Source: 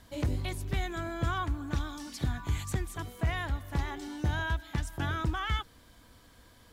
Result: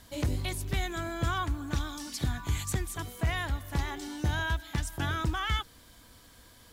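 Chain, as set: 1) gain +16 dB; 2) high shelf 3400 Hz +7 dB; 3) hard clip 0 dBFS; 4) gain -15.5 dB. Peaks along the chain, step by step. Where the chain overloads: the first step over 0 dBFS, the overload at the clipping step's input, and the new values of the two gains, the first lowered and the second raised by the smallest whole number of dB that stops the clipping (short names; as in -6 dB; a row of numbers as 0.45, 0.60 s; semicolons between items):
-5.5, -3.0, -3.0, -18.5 dBFS; no overload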